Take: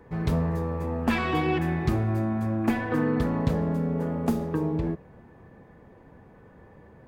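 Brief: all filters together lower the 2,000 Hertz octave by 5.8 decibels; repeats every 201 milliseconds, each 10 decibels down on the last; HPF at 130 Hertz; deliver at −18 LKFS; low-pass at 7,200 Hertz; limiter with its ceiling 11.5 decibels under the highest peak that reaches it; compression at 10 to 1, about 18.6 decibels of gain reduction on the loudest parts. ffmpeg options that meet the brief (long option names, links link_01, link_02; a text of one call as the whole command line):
ffmpeg -i in.wav -af "highpass=130,lowpass=7200,equalizer=frequency=2000:width_type=o:gain=-7.5,acompressor=threshold=-40dB:ratio=10,alimiter=level_in=14.5dB:limit=-24dB:level=0:latency=1,volume=-14.5dB,aecho=1:1:201|402|603|804:0.316|0.101|0.0324|0.0104,volume=29.5dB" out.wav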